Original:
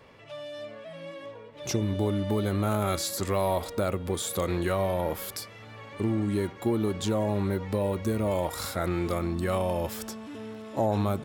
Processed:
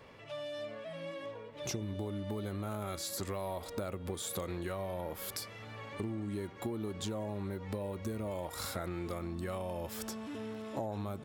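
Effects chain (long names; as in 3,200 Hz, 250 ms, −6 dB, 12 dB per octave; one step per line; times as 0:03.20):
downward compressor 5 to 1, threshold −34 dBFS, peak gain reduction 11.5 dB
level −1.5 dB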